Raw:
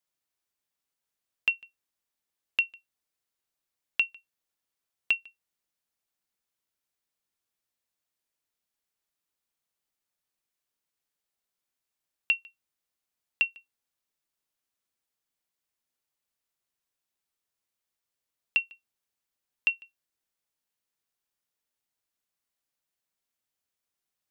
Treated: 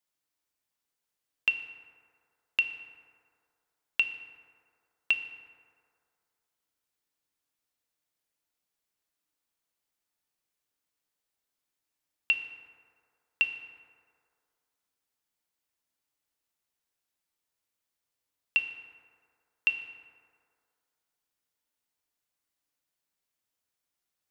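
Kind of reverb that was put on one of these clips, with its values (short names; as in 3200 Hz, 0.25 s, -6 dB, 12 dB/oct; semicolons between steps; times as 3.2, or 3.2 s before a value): FDN reverb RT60 2.2 s, low-frequency decay 0.75×, high-frequency decay 0.4×, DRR 6 dB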